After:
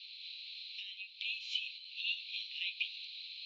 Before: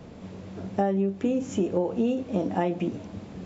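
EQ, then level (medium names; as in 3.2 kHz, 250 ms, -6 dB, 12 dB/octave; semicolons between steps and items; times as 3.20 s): steep high-pass 2.4 kHz 96 dB/octave; resonant low-pass 4.1 kHz, resonance Q 14; distance through air 340 m; +11.5 dB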